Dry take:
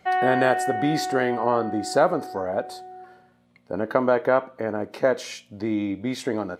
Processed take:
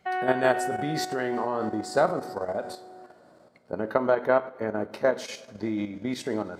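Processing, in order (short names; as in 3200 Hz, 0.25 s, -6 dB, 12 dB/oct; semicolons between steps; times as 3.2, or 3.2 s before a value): two-slope reverb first 0.51 s, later 4.3 s, from -18 dB, DRR 9 dB; level quantiser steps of 9 dB; gain -1 dB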